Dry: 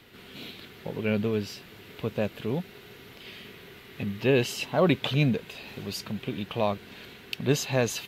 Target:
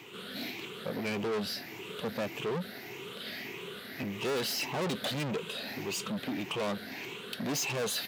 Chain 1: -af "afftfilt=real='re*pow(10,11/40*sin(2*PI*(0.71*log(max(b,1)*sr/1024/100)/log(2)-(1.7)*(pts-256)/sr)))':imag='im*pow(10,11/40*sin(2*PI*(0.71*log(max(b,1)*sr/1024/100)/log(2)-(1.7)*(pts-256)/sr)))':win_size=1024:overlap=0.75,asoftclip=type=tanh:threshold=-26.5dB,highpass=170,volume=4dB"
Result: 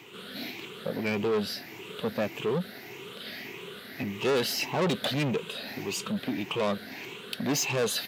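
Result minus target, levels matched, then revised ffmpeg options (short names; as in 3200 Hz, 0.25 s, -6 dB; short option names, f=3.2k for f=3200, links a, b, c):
soft clip: distortion -4 dB
-af "afftfilt=real='re*pow(10,11/40*sin(2*PI*(0.71*log(max(b,1)*sr/1024/100)/log(2)-(1.7)*(pts-256)/sr)))':imag='im*pow(10,11/40*sin(2*PI*(0.71*log(max(b,1)*sr/1024/100)/log(2)-(1.7)*(pts-256)/sr)))':win_size=1024:overlap=0.75,asoftclip=type=tanh:threshold=-33.5dB,highpass=170,volume=4dB"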